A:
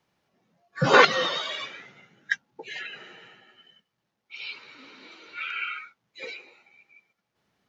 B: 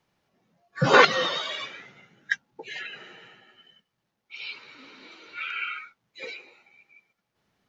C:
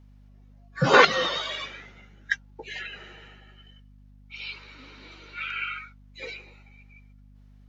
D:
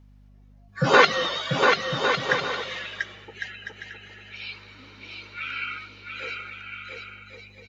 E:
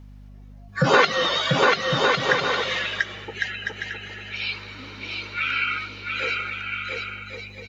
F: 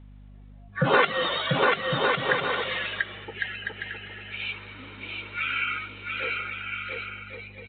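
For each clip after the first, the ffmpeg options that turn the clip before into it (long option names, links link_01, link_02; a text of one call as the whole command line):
ffmpeg -i in.wav -af "lowshelf=frequency=61:gain=7" out.wav
ffmpeg -i in.wav -af "aeval=exprs='val(0)+0.00282*(sin(2*PI*50*n/s)+sin(2*PI*2*50*n/s)/2+sin(2*PI*3*50*n/s)/3+sin(2*PI*4*50*n/s)/4+sin(2*PI*5*50*n/s)/5)':channel_layout=same" out.wav
ffmpeg -i in.wav -af "aecho=1:1:690|1104|1352|1501|1591:0.631|0.398|0.251|0.158|0.1" out.wav
ffmpeg -i in.wav -af "acompressor=threshold=-29dB:ratio=2,volume=8.5dB" out.wav
ffmpeg -i in.wav -af "volume=-3.5dB" -ar 8000 -c:a pcm_mulaw out.wav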